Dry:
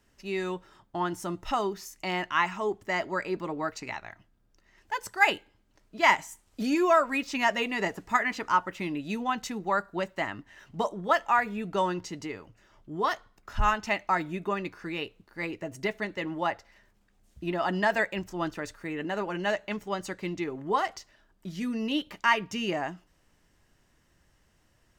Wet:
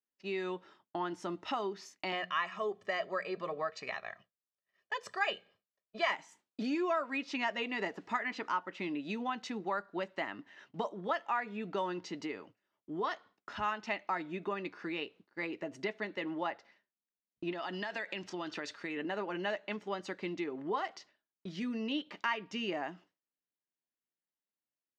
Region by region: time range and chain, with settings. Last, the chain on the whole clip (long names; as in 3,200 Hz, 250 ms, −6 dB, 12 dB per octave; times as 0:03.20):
0:02.12–0:06.13: mains-hum notches 60/120/180/240 Hz + comb filter 1.7 ms, depth 81%
0:17.52–0:18.97: parametric band 4,400 Hz +8.5 dB 2.4 octaves + downward compressor 5 to 1, threshold −32 dBFS
whole clip: Chebyshev band-pass filter 250–4,100 Hz, order 2; downward expander −49 dBFS; downward compressor 2 to 1, threshold −37 dBFS